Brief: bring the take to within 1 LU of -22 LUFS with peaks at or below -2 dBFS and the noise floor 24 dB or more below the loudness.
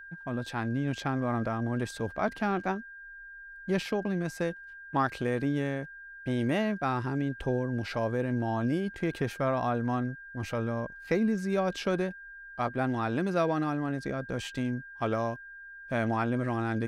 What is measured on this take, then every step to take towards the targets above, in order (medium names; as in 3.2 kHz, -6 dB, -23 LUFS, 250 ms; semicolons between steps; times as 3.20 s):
steady tone 1.6 kHz; tone level -44 dBFS; loudness -31.0 LUFS; peak level -15.0 dBFS; loudness target -22.0 LUFS
-> band-stop 1.6 kHz, Q 30; trim +9 dB